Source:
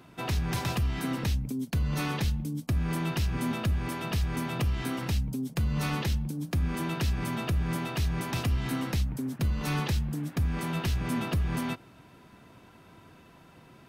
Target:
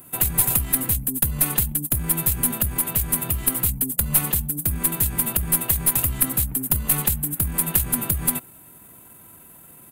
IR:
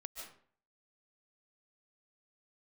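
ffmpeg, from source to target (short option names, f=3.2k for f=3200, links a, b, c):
-af "atempo=1.4,aexciter=amount=12.5:drive=9.3:freq=8.2k,aeval=exprs='0.708*(cos(1*acos(clip(val(0)/0.708,-1,1)))-cos(1*PI/2))+0.1*(cos(4*acos(clip(val(0)/0.708,-1,1)))-cos(4*PI/2))+0.0178*(cos(6*acos(clip(val(0)/0.708,-1,1)))-cos(6*PI/2))':c=same,volume=1dB"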